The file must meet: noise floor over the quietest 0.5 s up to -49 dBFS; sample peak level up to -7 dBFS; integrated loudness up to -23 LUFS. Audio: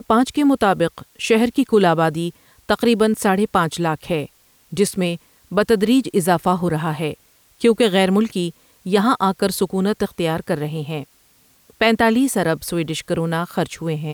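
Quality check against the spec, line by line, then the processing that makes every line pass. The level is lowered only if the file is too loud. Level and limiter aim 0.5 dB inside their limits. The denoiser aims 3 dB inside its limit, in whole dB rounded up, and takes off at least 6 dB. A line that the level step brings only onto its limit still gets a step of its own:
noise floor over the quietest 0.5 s -56 dBFS: pass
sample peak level -4.5 dBFS: fail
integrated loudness -19.0 LUFS: fail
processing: trim -4.5 dB

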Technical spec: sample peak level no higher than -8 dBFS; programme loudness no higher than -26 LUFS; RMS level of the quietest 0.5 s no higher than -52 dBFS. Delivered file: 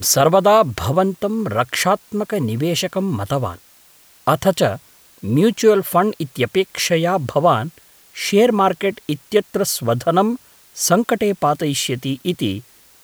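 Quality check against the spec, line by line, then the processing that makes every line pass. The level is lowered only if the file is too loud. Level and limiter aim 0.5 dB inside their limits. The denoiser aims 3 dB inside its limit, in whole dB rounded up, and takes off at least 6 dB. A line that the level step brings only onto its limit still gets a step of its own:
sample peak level -3.0 dBFS: fail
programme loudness -18.0 LUFS: fail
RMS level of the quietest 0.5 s -50 dBFS: fail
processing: trim -8.5 dB

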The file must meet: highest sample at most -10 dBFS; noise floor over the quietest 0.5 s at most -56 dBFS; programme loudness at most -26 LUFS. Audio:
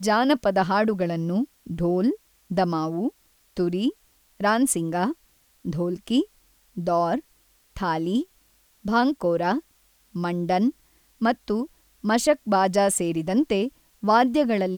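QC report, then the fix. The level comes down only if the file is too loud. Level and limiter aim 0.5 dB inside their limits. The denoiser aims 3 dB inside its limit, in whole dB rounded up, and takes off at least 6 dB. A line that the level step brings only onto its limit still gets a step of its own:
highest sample -7.0 dBFS: fail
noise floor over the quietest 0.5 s -62 dBFS: pass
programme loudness -24.0 LUFS: fail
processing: trim -2.5 dB; peak limiter -10.5 dBFS

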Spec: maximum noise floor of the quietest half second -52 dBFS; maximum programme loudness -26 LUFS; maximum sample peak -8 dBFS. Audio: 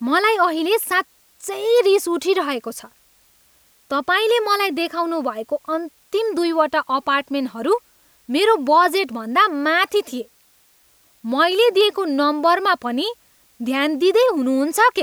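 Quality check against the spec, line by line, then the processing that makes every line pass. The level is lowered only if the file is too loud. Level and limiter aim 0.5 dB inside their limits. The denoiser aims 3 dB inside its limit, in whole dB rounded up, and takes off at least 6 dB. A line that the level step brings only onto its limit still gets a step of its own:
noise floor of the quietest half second -57 dBFS: pass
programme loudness -19.0 LUFS: fail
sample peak -4.5 dBFS: fail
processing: trim -7.5 dB

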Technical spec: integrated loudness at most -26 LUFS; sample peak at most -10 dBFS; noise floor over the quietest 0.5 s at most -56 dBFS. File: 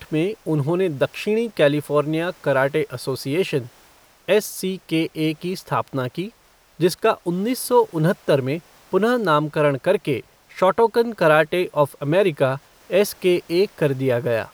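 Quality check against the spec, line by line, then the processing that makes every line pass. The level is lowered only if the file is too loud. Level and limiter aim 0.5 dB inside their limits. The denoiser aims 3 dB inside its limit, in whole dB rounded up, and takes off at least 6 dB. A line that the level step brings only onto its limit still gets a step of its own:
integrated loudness -21.0 LUFS: fail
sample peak -4.0 dBFS: fail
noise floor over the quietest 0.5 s -54 dBFS: fail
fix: trim -5.5 dB; peak limiter -10.5 dBFS

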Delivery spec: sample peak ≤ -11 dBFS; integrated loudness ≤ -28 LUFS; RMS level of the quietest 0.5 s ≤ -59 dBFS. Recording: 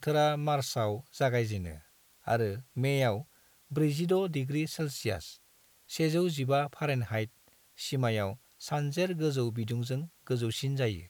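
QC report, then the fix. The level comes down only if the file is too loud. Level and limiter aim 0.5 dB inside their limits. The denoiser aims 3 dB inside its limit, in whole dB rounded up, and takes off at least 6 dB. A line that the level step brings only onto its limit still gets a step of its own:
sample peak -16.5 dBFS: pass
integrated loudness -31.5 LUFS: pass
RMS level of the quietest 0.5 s -64 dBFS: pass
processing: none needed

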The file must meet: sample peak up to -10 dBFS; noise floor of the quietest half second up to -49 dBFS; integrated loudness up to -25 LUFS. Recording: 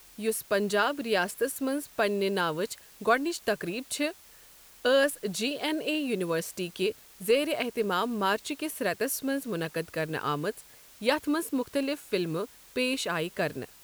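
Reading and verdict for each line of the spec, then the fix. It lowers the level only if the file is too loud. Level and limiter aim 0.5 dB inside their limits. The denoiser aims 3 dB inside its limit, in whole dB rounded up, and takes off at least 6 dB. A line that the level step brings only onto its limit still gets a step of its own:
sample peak -11.0 dBFS: pass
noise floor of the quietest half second -54 dBFS: pass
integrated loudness -29.5 LUFS: pass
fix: none needed

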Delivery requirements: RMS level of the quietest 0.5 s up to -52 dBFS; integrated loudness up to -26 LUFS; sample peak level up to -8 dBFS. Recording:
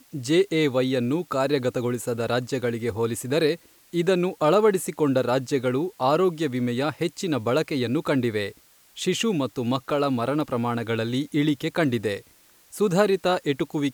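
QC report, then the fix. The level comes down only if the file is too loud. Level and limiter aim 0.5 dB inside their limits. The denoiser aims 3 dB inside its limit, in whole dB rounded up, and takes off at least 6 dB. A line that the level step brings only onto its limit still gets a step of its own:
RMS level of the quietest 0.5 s -56 dBFS: pass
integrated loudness -24.5 LUFS: fail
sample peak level -7.5 dBFS: fail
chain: trim -2 dB

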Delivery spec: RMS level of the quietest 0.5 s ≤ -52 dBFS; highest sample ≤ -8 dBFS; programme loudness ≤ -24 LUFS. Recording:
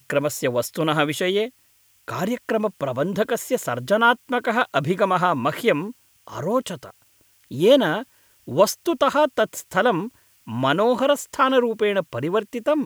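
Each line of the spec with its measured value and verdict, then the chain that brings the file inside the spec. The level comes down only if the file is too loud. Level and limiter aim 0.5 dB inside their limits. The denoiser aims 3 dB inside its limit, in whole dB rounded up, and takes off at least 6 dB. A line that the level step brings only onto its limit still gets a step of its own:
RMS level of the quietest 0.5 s -59 dBFS: pass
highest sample -4.0 dBFS: fail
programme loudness -21.5 LUFS: fail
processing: trim -3 dB; peak limiter -8.5 dBFS

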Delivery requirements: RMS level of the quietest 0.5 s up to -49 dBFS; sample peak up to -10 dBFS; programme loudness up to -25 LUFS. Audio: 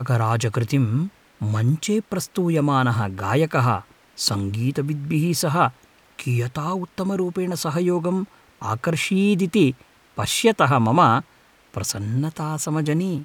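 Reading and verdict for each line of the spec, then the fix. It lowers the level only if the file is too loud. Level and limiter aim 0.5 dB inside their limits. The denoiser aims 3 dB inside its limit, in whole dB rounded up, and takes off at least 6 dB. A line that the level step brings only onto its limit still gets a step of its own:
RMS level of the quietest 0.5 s -55 dBFS: pass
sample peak -4.5 dBFS: fail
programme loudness -22.0 LUFS: fail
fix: trim -3.5 dB; peak limiter -10.5 dBFS

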